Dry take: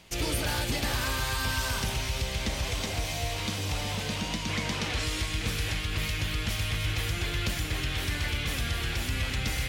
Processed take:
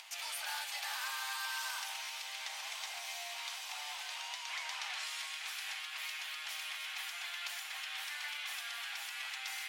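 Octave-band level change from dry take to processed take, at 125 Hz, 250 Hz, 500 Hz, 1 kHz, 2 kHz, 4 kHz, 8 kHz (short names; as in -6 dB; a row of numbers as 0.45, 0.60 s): under -40 dB, under -40 dB, -21.5 dB, -8.0 dB, -7.0 dB, -7.5 dB, -8.0 dB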